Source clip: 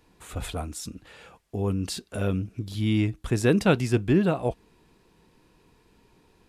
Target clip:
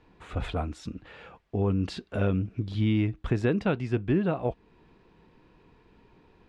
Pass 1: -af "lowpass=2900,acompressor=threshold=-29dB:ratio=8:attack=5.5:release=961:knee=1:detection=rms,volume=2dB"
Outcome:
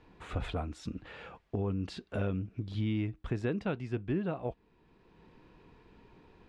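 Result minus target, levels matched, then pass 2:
downward compressor: peak gain reduction +7.5 dB
-af "lowpass=2900,acompressor=threshold=-20.5dB:ratio=8:attack=5.5:release=961:knee=1:detection=rms,volume=2dB"

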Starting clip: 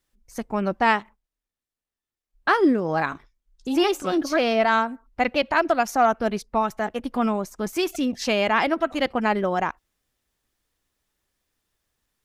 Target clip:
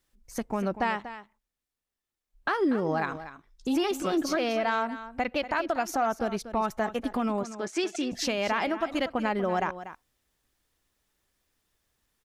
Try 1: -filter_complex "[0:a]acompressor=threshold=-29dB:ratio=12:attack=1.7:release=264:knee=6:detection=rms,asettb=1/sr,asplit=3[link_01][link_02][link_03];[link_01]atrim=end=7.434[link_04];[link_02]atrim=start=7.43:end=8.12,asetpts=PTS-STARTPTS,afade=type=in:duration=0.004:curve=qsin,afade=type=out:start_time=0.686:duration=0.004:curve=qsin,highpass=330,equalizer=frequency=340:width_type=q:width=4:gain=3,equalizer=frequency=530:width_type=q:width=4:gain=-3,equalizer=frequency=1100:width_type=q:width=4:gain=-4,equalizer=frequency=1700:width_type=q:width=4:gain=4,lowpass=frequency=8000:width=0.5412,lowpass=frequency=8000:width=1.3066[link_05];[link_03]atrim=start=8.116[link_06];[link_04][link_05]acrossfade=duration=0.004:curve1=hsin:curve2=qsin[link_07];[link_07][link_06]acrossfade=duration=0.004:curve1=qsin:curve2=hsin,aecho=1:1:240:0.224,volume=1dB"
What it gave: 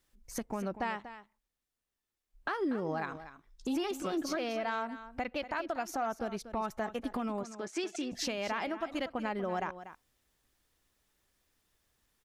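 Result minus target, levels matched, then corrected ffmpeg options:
downward compressor: peak gain reduction +7.5 dB
-filter_complex "[0:a]acompressor=threshold=-21dB:ratio=12:attack=1.7:release=264:knee=6:detection=rms,asettb=1/sr,asplit=3[link_01][link_02][link_03];[link_01]atrim=end=7.434[link_04];[link_02]atrim=start=7.43:end=8.12,asetpts=PTS-STARTPTS,afade=type=in:duration=0.004:curve=qsin,afade=type=out:start_time=0.686:duration=0.004:curve=qsin,highpass=330,equalizer=frequency=340:width_type=q:width=4:gain=3,equalizer=frequency=530:width_type=q:width=4:gain=-3,equalizer=frequency=1100:width_type=q:width=4:gain=-4,equalizer=frequency=1700:width_type=q:width=4:gain=4,lowpass=frequency=8000:width=0.5412,lowpass=frequency=8000:width=1.3066[link_05];[link_03]atrim=start=8.116[link_06];[link_04][link_05]acrossfade=duration=0.004:curve1=hsin:curve2=qsin[link_07];[link_07][link_06]acrossfade=duration=0.004:curve1=qsin:curve2=hsin,aecho=1:1:240:0.224,volume=1dB"

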